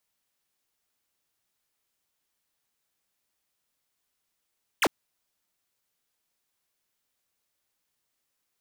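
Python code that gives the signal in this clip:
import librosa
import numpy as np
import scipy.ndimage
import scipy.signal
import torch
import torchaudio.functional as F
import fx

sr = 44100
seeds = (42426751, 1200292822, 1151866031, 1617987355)

y = fx.laser_zap(sr, level_db=-21.5, start_hz=3500.0, end_hz=220.0, length_s=0.05, wave='square')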